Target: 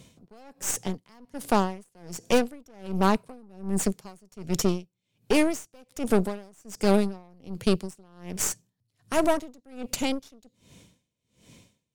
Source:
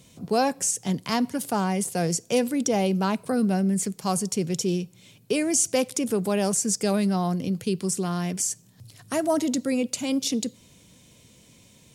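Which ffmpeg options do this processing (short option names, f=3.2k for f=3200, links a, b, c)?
-af "highshelf=f=5.3k:g=-6,aeval=exprs='0.251*(cos(1*acos(clip(val(0)/0.251,-1,1)))-cos(1*PI/2))+0.0251*(cos(4*acos(clip(val(0)/0.251,-1,1)))-cos(4*PI/2))+0.0224*(cos(8*acos(clip(val(0)/0.251,-1,1)))-cos(8*PI/2))':c=same,aeval=exprs='val(0)*pow(10,-33*(0.5-0.5*cos(2*PI*1.3*n/s))/20)':c=same,volume=3dB"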